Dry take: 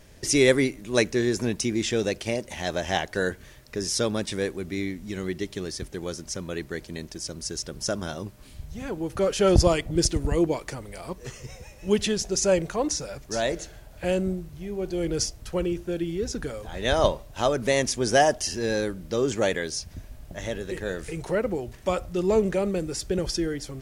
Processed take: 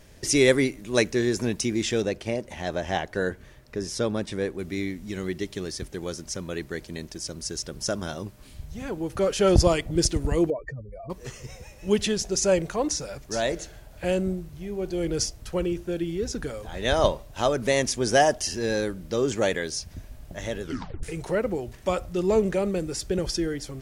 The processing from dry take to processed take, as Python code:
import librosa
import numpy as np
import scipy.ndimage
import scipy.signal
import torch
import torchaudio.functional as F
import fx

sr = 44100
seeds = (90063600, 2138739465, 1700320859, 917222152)

y = fx.high_shelf(x, sr, hz=2600.0, db=-8.5, at=(2.02, 4.59))
y = fx.spec_expand(y, sr, power=3.2, at=(10.5, 11.1))
y = fx.edit(y, sr, fx.tape_stop(start_s=20.63, length_s=0.4), tone=tone)